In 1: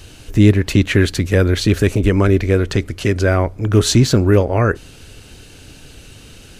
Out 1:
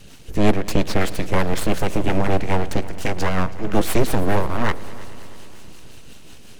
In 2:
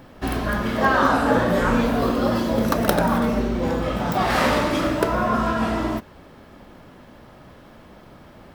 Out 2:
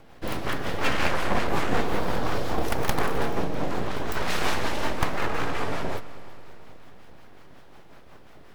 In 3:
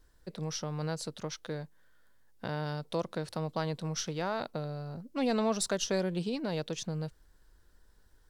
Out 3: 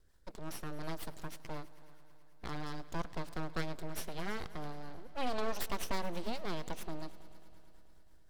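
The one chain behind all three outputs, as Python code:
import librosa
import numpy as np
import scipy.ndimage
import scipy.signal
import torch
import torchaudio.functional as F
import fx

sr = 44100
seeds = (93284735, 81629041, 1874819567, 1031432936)

y = fx.rotary(x, sr, hz=5.5)
y = np.abs(y)
y = fx.echo_heads(y, sr, ms=108, heads='all three', feedback_pct=63, wet_db=-23)
y = y * librosa.db_to_amplitude(-1.0)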